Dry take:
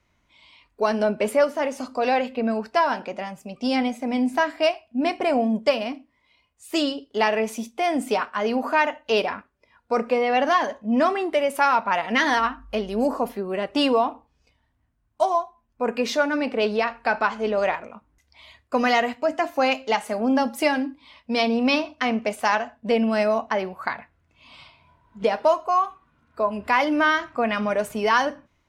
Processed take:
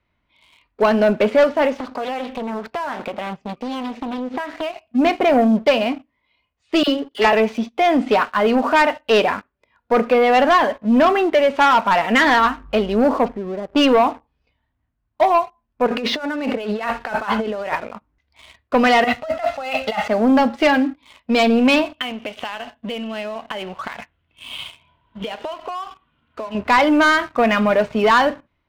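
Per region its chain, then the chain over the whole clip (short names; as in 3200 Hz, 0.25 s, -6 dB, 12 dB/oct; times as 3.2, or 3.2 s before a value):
1.76–4.83 LPF 11000 Hz + compressor 10:1, threshold -30 dBFS + Doppler distortion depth 0.64 ms
6.83–7.33 low shelf 90 Hz -11.5 dB + dispersion lows, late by 48 ms, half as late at 1100 Hz
13.28–13.76 compressor 2:1, threshold -39 dBFS + Gaussian blur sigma 6 samples + low shelf 130 Hz +8.5 dB
15.86–17.73 notch 2400 Hz, Q 18 + negative-ratio compressor -32 dBFS
19.04–20.08 bell 370 Hz -12 dB 0.71 oct + comb 1.5 ms, depth 75% + negative-ratio compressor -31 dBFS
21.93–26.55 compressor 16:1, threshold -33 dBFS + bell 3100 Hz +14 dB 0.51 oct
whole clip: LPF 4100 Hz 24 dB/oct; de-esser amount 60%; sample leveller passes 2; gain +1 dB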